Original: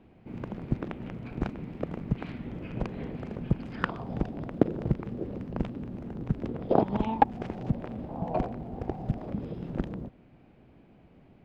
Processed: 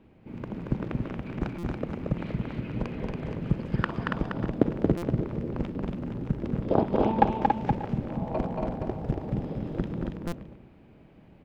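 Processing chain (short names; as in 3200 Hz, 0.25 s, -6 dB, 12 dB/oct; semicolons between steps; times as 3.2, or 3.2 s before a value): notch 720 Hz, Q 13; tapped delay 63/229/281/472/587/615 ms -18/-3.5/-4.5/-8/-19.5/-19 dB; stuck buffer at 1.58/4.97/10.27, samples 256, times 8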